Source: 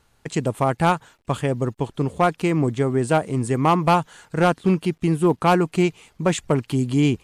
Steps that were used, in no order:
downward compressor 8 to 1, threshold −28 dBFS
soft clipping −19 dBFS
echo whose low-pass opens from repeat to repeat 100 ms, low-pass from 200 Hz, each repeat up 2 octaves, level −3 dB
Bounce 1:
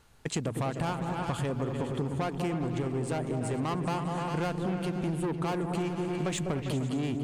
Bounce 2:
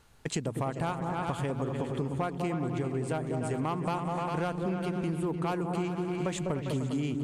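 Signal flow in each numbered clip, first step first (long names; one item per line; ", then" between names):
soft clipping, then echo whose low-pass opens from repeat to repeat, then downward compressor
echo whose low-pass opens from repeat to repeat, then downward compressor, then soft clipping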